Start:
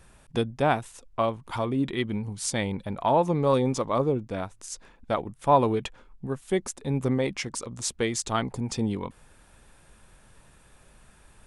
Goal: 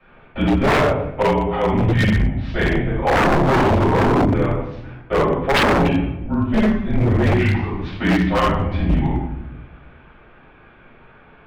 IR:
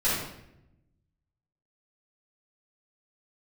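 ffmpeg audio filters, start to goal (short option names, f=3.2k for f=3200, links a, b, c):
-filter_complex "[0:a]highpass=f=220:t=q:w=0.5412,highpass=f=220:t=q:w=1.307,lowpass=f=3.1k:t=q:w=0.5176,lowpass=f=3.1k:t=q:w=0.7071,lowpass=f=3.1k:t=q:w=1.932,afreqshift=-160[a];[1:a]atrim=start_sample=2205,asetrate=41013,aresample=44100[b];[a][b]afir=irnorm=-1:irlink=0,aeval=exprs='0.316*(abs(mod(val(0)/0.316+3,4)-2)-1)':c=same"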